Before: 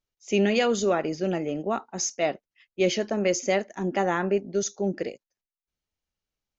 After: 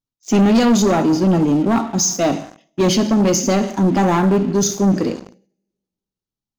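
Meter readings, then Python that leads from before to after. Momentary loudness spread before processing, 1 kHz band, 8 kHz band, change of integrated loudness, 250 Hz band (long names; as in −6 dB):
7 LU, +9.5 dB, can't be measured, +10.0 dB, +14.5 dB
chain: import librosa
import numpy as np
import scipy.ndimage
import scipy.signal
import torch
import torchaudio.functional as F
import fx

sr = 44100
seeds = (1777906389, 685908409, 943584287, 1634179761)

y = fx.graphic_eq(x, sr, hz=(125, 250, 500, 1000, 2000, 4000), db=(6, 10, -7, 5, -11, 3))
y = fx.rev_double_slope(y, sr, seeds[0], early_s=0.68, late_s=1.8, knee_db=-23, drr_db=8.5)
y = fx.leveller(y, sr, passes=3)
y = fx.sustainer(y, sr, db_per_s=130.0)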